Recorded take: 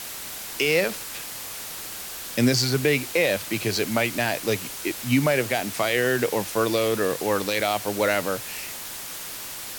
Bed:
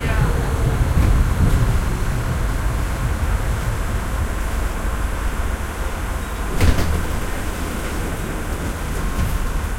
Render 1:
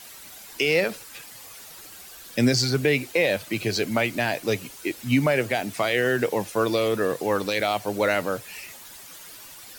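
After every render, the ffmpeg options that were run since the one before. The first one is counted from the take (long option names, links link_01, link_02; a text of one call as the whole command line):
ffmpeg -i in.wav -af "afftdn=noise_reduction=11:noise_floor=-36" out.wav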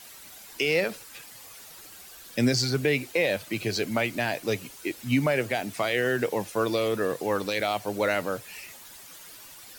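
ffmpeg -i in.wav -af "volume=-3dB" out.wav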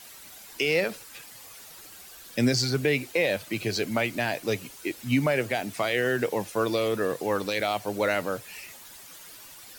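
ffmpeg -i in.wav -af anull out.wav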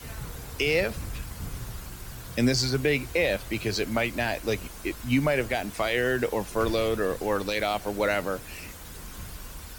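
ffmpeg -i in.wav -i bed.wav -filter_complex "[1:a]volume=-20.5dB[link_01];[0:a][link_01]amix=inputs=2:normalize=0" out.wav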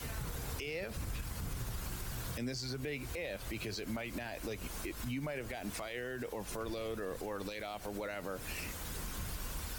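ffmpeg -i in.wav -af "acompressor=threshold=-31dB:ratio=6,alimiter=level_in=6.5dB:limit=-24dB:level=0:latency=1:release=88,volume=-6.5dB" out.wav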